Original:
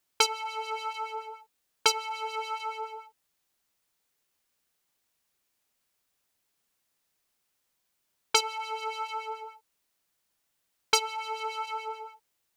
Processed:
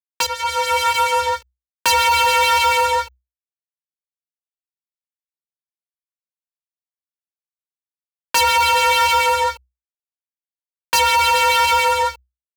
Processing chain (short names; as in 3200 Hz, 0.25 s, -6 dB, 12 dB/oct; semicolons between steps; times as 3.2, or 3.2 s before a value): opening faded in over 1.67 s; fuzz box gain 43 dB, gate -50 dBFS; frequency shift +62 Hz